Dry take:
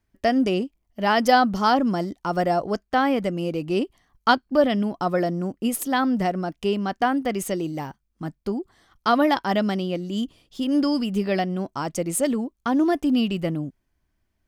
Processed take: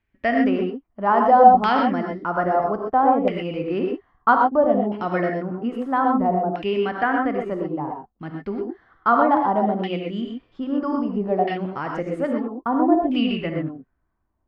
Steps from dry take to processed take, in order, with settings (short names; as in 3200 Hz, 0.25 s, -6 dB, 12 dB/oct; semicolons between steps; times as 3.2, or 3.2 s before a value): bell 4300 Hz +2 dB; non-linear reverb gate 0.15 s rising, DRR 1 dB; LFO low-pass saw down 0.61 Hz 740–2600 Hz; gain -3 dB